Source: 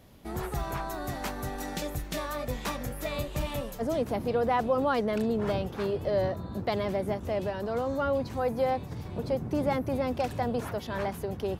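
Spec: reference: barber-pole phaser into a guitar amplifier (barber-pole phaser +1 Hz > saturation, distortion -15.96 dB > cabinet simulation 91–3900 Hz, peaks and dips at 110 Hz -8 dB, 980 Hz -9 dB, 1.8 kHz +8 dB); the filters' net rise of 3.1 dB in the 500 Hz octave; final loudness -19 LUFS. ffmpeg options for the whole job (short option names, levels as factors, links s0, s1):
-filter_complex "[0:a]equalizer=f=500:t=o:g=4,asplit=2[s0][s1];[s1]afreqshift=1[s2];[s0][s2]amix=inputs=2:normalize=1,asoftclip=threshold=0.0708,highpass=91,equalizer=f=110:t=q:w=4:g=-8,equalizer=f=980:t=q:w=4:g=-9,equalizer=f=1800:t=q:w=4:g=8,lowpass=f=3900:w=0.5412,lowpass=f=3900:w=1.3066,volume=5.62"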